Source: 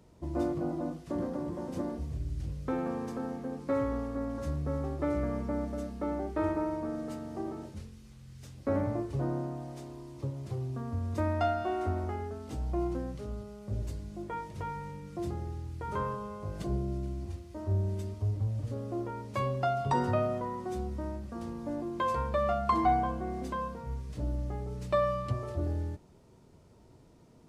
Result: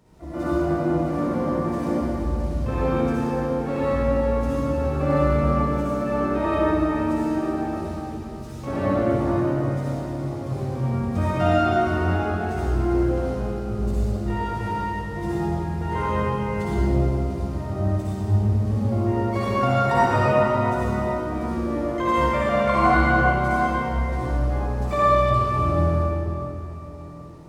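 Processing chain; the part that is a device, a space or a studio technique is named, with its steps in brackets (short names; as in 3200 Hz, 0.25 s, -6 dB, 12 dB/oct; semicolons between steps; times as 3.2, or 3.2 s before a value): shimmer-style reverb (harmoniser +12 st -10 dB; reverb RT60 3.7 s, pre-delay 51 ms, DRR -10.5 dB)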